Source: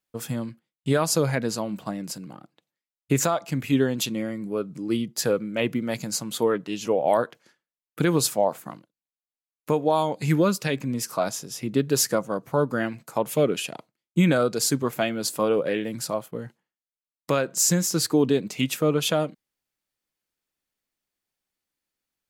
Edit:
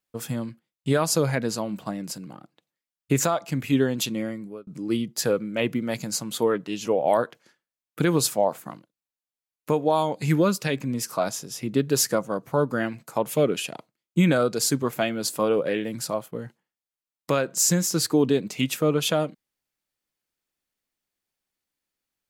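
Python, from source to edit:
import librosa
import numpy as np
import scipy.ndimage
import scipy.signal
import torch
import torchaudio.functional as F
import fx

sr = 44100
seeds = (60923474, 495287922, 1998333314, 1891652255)

y = fx.edit(x, sr, fx.fade_out_span(start_s=4.28, length_s=0.39), tone=tone)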